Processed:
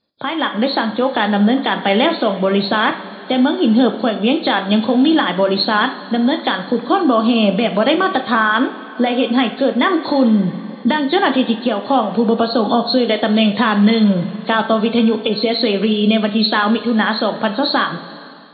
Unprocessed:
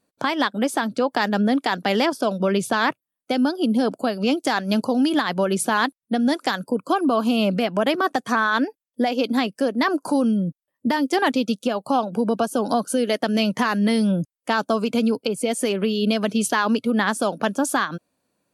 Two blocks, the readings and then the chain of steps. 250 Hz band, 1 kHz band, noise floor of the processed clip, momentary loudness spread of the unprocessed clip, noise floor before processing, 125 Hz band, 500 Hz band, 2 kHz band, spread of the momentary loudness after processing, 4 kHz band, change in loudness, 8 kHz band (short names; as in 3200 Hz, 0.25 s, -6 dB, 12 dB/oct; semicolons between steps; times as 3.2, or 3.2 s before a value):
+6.5 dB, +5.5 dB, -33 dBFS, 4 LU, -84 dBFS, +6.5 dB, +6.0 dB, +5.5 dB, 5 LU, +9.0 dB, +6.0 dB, under -40 dB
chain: nonlinear frequency compression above 3200 Hz 4:1; two-slope reverb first 0.5 s, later 4.7 s, from -17 dB, DRR 6 dB; AGC; gain -1 dB